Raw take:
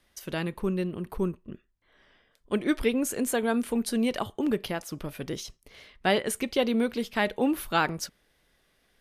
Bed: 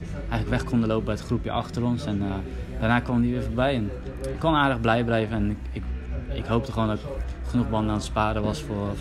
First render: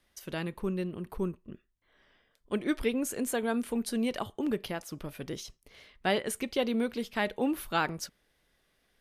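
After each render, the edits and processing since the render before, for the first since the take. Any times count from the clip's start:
level −4 dB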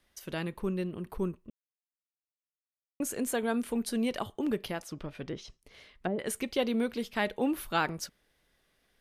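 0:01.50–0:03.00: silence
0:04.83–0:06.19: treble cut that deepens with the level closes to 390 Hz, closed at −27 dBFS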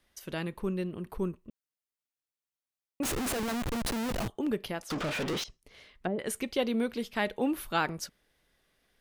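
0:03.03–0:04.28: comparator with hysteresis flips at −38 dBFS
0:04.90–0:05.44: mid-hump overdrive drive 39 dB, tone 4,800 Hz, clips at −25.5 dBFS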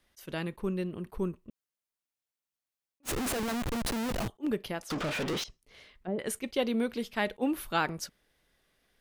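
level that may rise only so fast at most 590 dB per second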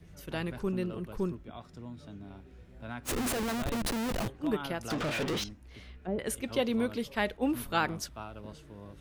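mix in bed −19.5 dB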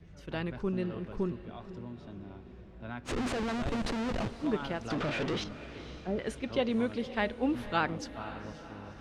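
high-frequency loss of the air 110 metres
feedback delay with all-pass diffusion 515 ms, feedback 55%, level −14 dB

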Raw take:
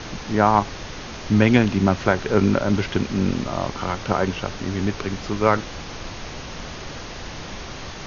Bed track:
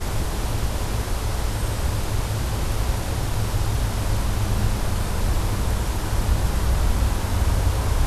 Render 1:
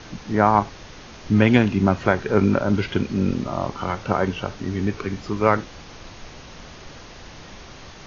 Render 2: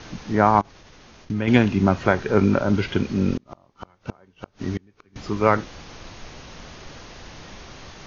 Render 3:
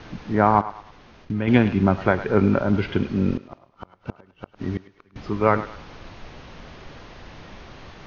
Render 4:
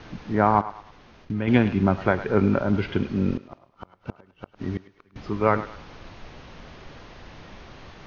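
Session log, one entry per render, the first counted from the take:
noise reduction from a noise print 7 dB
0:00.61–0:01.48: output level in coarse steps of 24 dB; 0:03.36–0:05.16: gate with flip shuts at −15 dBFS, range −32 dB
high-frequency loss of the air 180 metres; feedback echo with a high-pass in the loop 105 ms, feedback 42%, high-pass 550 Hz, level −13 dB
level −2 dB

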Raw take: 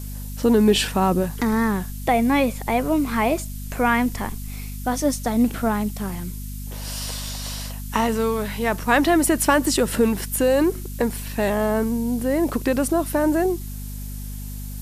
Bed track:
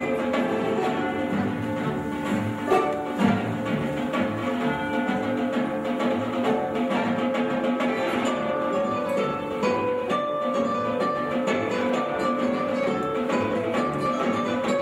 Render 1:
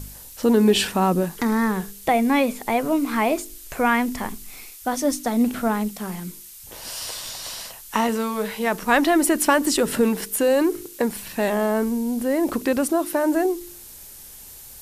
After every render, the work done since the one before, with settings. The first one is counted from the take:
hum removal 50 Hz, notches 9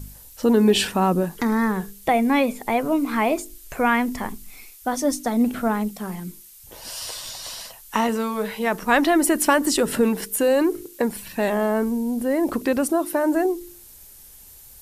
broadband denoise 6 dB, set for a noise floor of −42 dBFS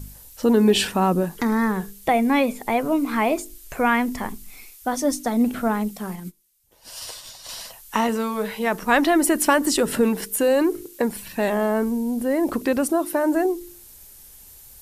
0:06.13–0:07.49: expander for the loud parts 2.5 to 1, over −44 dBFS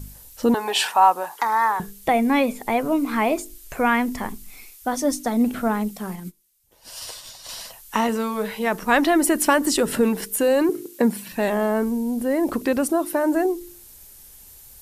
0:00.54–0:01.80: high-pass with resonance 860 Hz, resonance Q 3.8
0:10.69–0:11.32: high-pass with resonance 190 Hz, resonance Q 2.2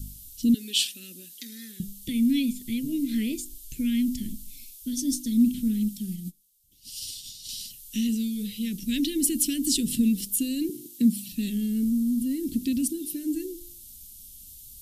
elliptic band-stop filter 260–3,200 Hz, stop band 70 dB
0:02.89–0:03.35: gain on a spectral selection 340–2,100 Hz +8 dB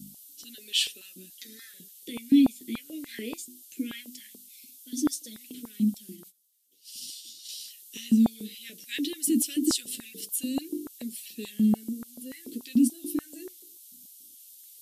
flanger 0.19 Hz, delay 5.8 ms, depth 8.8 ms, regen −27%
high-pass on a step sequencer 6.9 Hz 240–1,800 Hz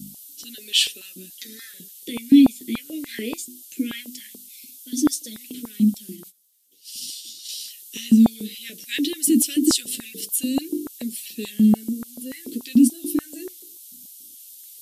level +7 dB

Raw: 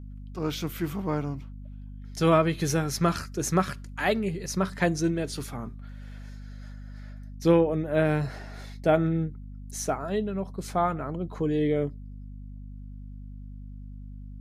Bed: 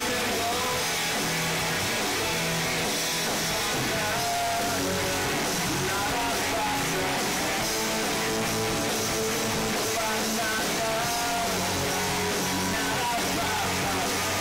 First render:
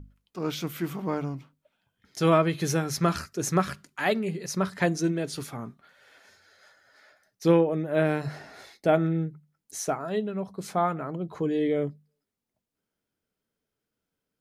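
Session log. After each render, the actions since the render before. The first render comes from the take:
mains-hum notches 50/100/150/200/250 Hz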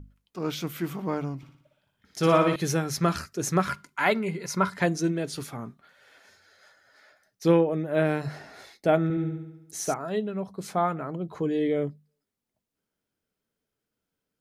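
0:01.37–0:02.56: flutter between parallel walls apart 10.1 metres, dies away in 0.65 s
0:03.65–0:04.76: hollow resonant body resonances 1,000/1,400/2,100 Hz, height 12 dB, ringing for 25 ms
0:09.03–0:09.94: flutter between parallel walls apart 12 metres, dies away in 0.88 s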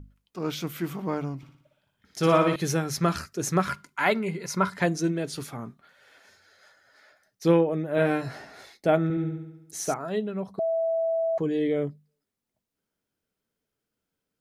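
0:07.96–0:08.45: double-tracking delay 17 ms −4 dB
0:10.59–0:11.38: beep over 657 Hz −22.5 dBFS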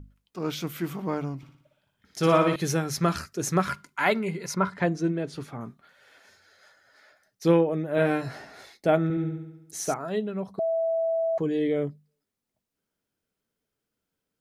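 0:04.54–0:05.61: low-pass filter 2,000 Hz 6 dB per octave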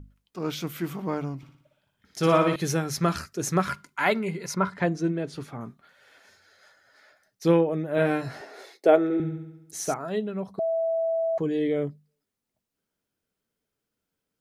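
0:08.41–0:09.20: high-pass with resonance 400 Hz, resonance Q 2.9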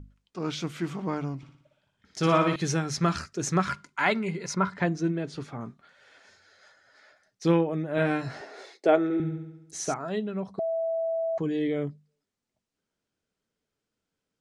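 low-pass filter 8,300 Hz 24 dB per octave
dynamic equaliser 510 Hz, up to −5 dB, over −34 dBFS, Q 1.8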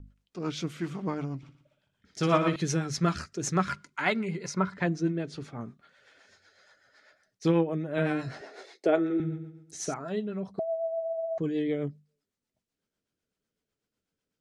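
rotating-speaker cabinet horn 8 Hz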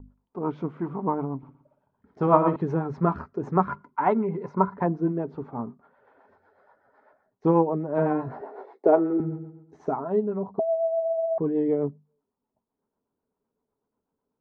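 low-pass with resonance 940 Hz, resonance Q 4.9
hollow resonant body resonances 250/410 Hz, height 8 dB, ringing for 45 ms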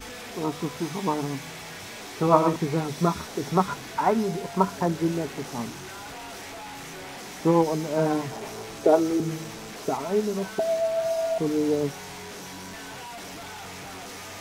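mix in bed −12.5 dB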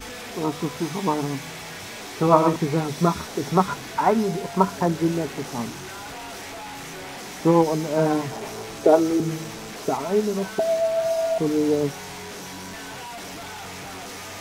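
level +3 dB
brickwall limiter −2 dBFS, peak gain reduction 1 dB

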